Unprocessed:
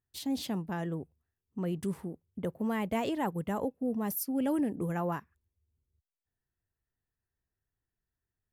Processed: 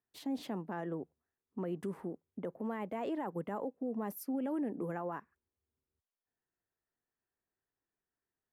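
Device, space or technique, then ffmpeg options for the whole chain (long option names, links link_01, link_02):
DJ mixer with the lows and highs turned down: -filter_complex "[0:a]acrossover=split=210 2100:gain=0.126 1 0.2[link_01][link_02][link_03];[link_01][link_02][link_03]amix=inputs=3:normalize=0,alimiter=level_in=7.5dB:limit=-24dB:level=0:latency=1:release=119,volume=-7.5dB,volume=2dB"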